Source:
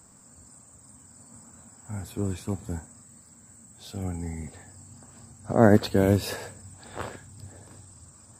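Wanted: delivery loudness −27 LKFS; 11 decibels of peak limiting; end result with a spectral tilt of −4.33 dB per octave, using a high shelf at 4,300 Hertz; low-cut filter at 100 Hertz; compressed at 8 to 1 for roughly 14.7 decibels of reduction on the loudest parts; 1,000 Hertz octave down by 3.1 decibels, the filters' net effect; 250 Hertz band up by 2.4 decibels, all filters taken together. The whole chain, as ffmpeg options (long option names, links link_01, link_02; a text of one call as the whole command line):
ffmpeg -i in.wav -af "highpass=100,equalizer=frequency=250:width_type=o:gain=3.5,equalizer=frequency=1000:width_type=o:gain=-5.5,highshelf=frequency=4300:gain=4,acompressor=threshold=-26dB:ratio=8,volume=14dB,alimiter=limit=-13dB:level=0:latency=1" out.wav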